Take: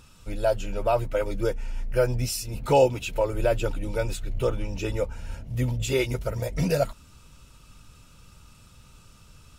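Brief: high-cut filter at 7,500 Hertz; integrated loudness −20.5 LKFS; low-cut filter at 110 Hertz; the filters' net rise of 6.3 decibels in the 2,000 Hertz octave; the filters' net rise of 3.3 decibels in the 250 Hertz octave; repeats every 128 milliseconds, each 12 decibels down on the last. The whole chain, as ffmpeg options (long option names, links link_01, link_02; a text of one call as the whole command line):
ffmpeg -i in.wav -af "highpass=110,lowpass=7500,equalizer=frequency=250:width_type=o:gain=5,equalizer=frequency=2000:width_type=o:gain=8.5,aecho=1:1:128|256|384:0.251|0.0628|0.0157,volume=5dB" out.wav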